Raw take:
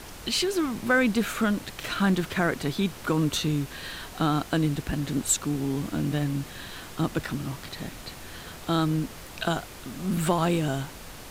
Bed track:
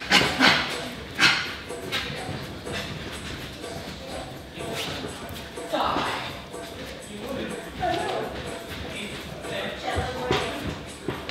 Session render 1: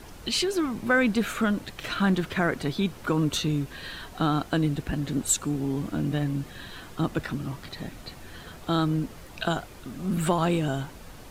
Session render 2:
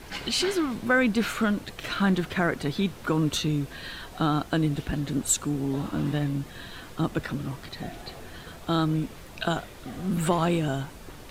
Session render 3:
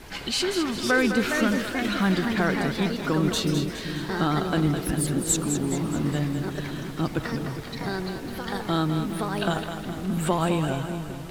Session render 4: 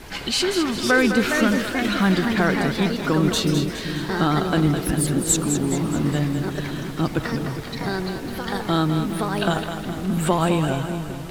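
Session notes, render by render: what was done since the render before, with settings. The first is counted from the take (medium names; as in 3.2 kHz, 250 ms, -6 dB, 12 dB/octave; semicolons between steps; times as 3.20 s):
noise reduction 7 dB, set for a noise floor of -43 dBFS
add bed track -18.5 dB
ever faster or slower copies 556 ms, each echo +3 st, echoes 2, each echo -6 dB; two-band feedback delay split 410 Hz, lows 405 ms, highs 208 ms, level -8 dB
trim +4 dB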